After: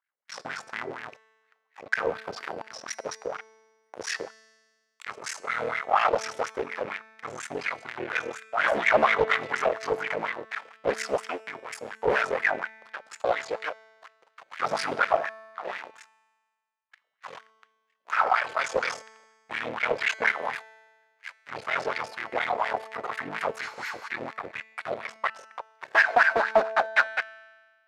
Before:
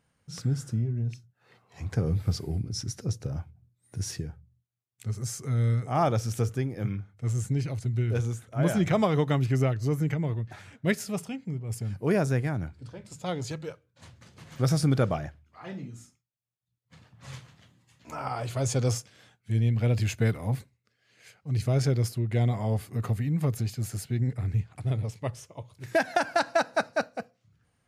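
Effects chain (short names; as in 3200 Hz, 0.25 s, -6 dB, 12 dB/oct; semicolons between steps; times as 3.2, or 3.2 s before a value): cycle switcher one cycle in 3, muted; HPF 140 Hz 12 dB/oct; tilt shelf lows -6.5 dB, about 880 Hz; sample leveller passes 5; spectral repair 23.66–24.05, 860–12000 Hz before; wah 4.2 Hz 470–2000 Hz, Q 3.3; resonator 220 Hz, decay 1.5 s, mix 60%; overdrive pedal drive 8 dB, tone 6500 Hz, clips at -14 dBFS; Doppler distortion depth 0.37 ms; gain +7 dB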